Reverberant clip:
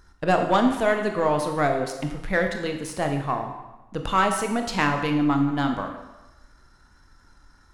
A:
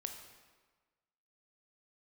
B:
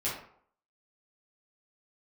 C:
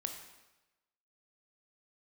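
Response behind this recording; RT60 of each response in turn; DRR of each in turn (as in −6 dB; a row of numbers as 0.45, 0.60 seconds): C; 1.4, 0.60, 1.0 seconds; 4.5, −8.5, 4.0 decibels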